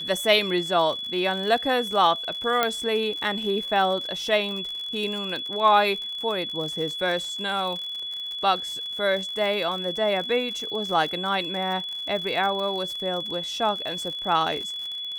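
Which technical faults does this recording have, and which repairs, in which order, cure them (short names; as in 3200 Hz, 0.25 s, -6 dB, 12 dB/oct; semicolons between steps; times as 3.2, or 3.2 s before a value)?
crackle 59/s -31 dBFS
tone 3400 Hz -30 dBFS
2.63 pop -7 dBFS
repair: de-click; notch 3400 Hz, Q 30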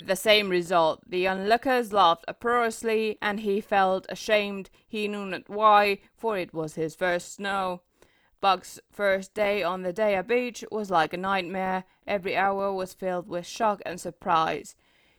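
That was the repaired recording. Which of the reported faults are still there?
none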